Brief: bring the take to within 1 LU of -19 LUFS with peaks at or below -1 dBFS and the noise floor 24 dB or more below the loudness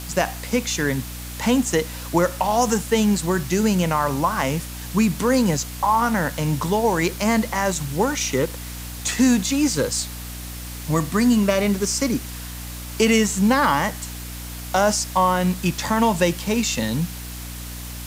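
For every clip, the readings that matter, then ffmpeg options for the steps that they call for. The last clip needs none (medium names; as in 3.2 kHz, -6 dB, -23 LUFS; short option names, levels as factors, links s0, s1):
hum 60 Hz; highest harmonic 300 Hz; hum level -33 dBFS; noise floor -33 dBFS; noise floor target -45 dBFS; loudness -21.0 LUFS; peak level -6.0 dBFS; loudness target -19.0 LUFS
-> -af "bandreject=f=60:t=h:w=6,bandreject=f=120:t=h:w=6,bandreject=f=180:t=h:w=6,bandreject=f=240:t=h:w=6,bandreject=f=300:t=h:w=6"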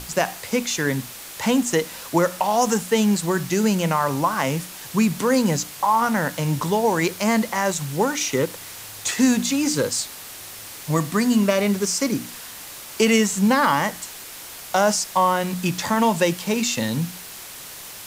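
hum not found; noise floor -38 dBFS; noise floor target -46 dBFS
-> -af "afftdn=nr=8:nf=-38"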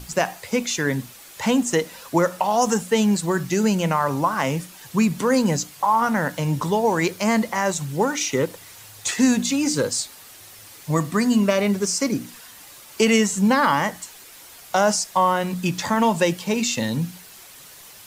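noise floor -45 dBFS; noise floor target -46 dBFS
-> -af "afftdn=nr=6:nf=-45"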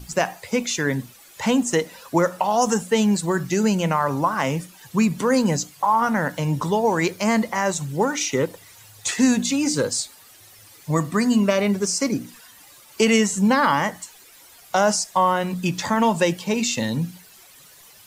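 noise floor -49 dBFS; loudness -21.5 LUFS; peak level -6.0 dBFS; loudness target -19.0 LUFS
-> -af "volume=1.33"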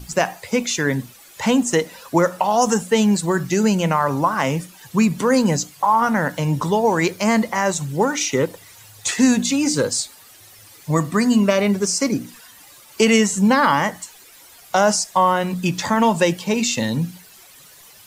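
loudness -19.0 LUFS; peak level -3.5 dBFS; noise floor -46 dBFS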